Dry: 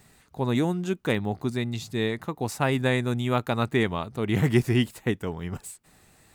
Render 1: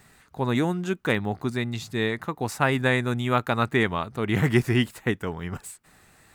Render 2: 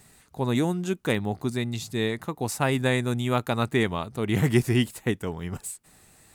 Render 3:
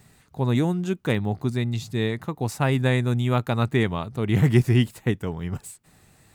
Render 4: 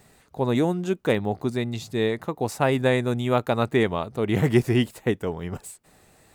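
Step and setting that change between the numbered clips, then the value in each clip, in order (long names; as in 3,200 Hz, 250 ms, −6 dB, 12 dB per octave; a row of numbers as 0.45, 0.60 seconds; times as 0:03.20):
parametric band, centre frequency: 1,500, 10,000, 120, 540 Hertz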